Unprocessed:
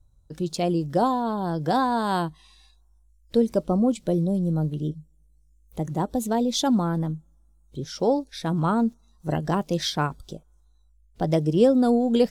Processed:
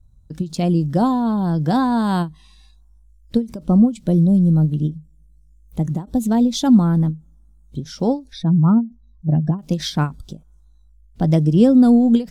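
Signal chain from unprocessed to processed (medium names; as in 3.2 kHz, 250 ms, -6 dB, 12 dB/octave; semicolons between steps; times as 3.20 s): 8.33–9.59 s: spectral contrast enhancement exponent 1.7; resonant low shelf 310 Hz +7 dB, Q 1.5; endings held to a fixed fall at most 220 dB/s; trim +1.5 dB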